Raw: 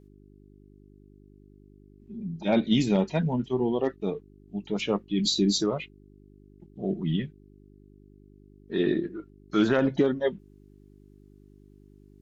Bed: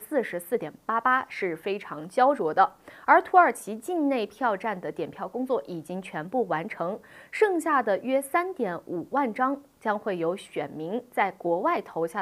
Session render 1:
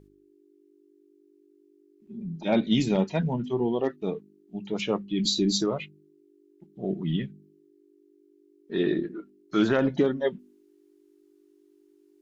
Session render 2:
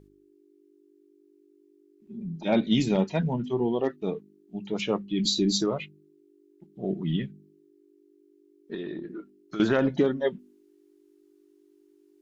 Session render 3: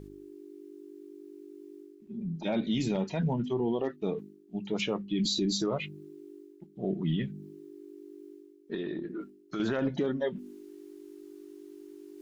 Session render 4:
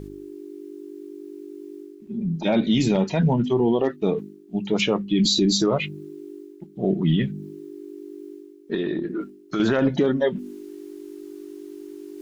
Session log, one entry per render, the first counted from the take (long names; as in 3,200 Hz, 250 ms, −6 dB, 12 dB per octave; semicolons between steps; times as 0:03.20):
hum removal 50 Hz, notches 5
0:08.74–0:09.60: downward compressor 4 to 1, threshold −33 dBFS
brickwall limiter −21 dBFS, peak gain reduction 9.5 dB; reversed playback; upward compression, threshold −35 dBFS; reversed playback
level +9.5 dB